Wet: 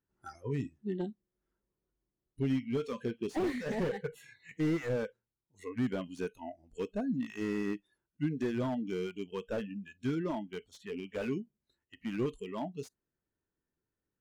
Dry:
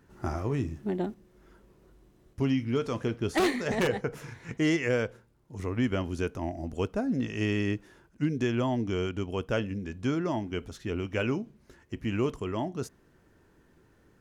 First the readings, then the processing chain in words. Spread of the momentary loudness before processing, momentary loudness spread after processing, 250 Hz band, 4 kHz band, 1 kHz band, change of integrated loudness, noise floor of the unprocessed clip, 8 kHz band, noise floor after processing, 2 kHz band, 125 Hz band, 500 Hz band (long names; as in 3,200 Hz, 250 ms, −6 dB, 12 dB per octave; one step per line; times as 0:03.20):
9 LU, 11 LU, −5.0 dB, −10.5 dB, −8.0 dB, −5.5 dB, −63 dBFS, below −10 dB, below −85 dBFS, −9.5 dB, −7.5 dB, −5.5 dB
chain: noise reduction from a noise print of the clip's start 24 dB
slew-rate limiting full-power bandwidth 28 Hz
level −4 dB